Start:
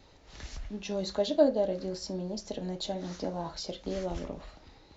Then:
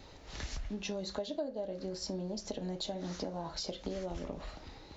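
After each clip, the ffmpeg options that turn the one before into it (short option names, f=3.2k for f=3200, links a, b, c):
-af "acompressor=threshold=-40dB:ratio=6,volume=4.5dB"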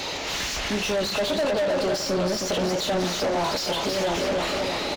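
-filter_complex "[0:a]asplit=2[a][b];[b]adelay=316,lowpass=f=3k:p=1,volume=-6dB,asplit=2[c][d];[d]adelay=316,lowpass=f=3k:p=1,volume=0.54,asplit=2[e][f];[f]adelay=316,lowpass=f=3k:p=1,volume=0.54,asplit=2[g][h];[h]adelay=316,lowpass=f=3k:p=1,volume=0.54,asplit=2[i][j];[j]adelay=316,lowpass=f=3k:p=1,volume=0.54,asplit=2[k][l];[l]adelay=316,lowpass=f=3k:p=1,volume=0.54,asplit=2[m][n];[n]adelay=316,lowpass=f=3k:p=1,volume=0.54[o];[a][c][e][g][i][k][m][o]amix=inputs=8:normalize=0,aexciter=amount=3:drive=3.5:freq=2.3k,asplit=2[p][q];[q]highpass=f=720:p=1,volume=36dB,asoftclip=type=tanh:threshold=-17dB[r];[p][r]amix=inputs=2:normalize=0,lowpass=f=2k:p=1,volume=-6dB,volume=1.5dB"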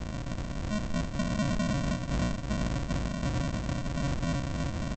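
-af "aeval=exprs='val(0)+0.0158*(sin(2*PI*60*n/s)+sin(2*PI*2*60*n/s)/2+sin(2*PI*3*60*n/s)/3+sin(2*PI*4*60*n/s)/4+sin(2*PI*5*60*n/s)/5)':c=same,aresample=16000,acrusher=samples=38:mix=1:aa=0.000001,aresample=44100,volume=-5.5dB"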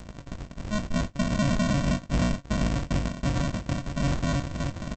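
-filter_complex "[0:a]agate=range=-30dB:threshold=-31dB:ratio=16:detection=peak,asplit=2[a][b];[b]adelay=21,volume=-10.5dB[c];[a][c]amix=inputs=2:normalize=0,acompressor=mode=upward:threshold=-34dB:ratio=2.5,volume=4.5dB"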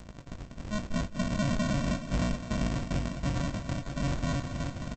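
-af "aecho=1:1:208|416|624|832|1040|1248|1456:0.266|0.154|0.0895|0.0519|0.0301|0.0175|0.0101,volume=-4.5dB"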